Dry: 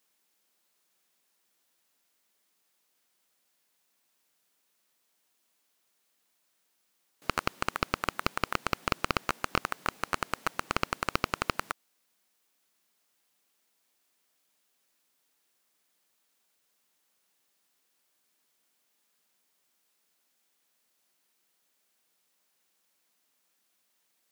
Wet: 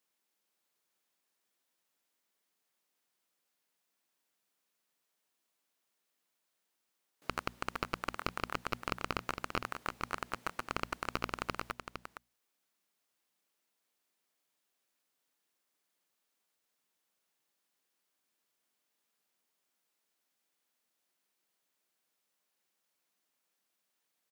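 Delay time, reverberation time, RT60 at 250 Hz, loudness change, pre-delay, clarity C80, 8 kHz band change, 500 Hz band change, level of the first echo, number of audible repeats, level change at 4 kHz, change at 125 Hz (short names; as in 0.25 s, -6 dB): 0.459 s, none, none, -6.5 dB, none, none, -8.5 dB, -6.0 dB, -8.0 dB, 1, -7.5 dB, -6.5 dB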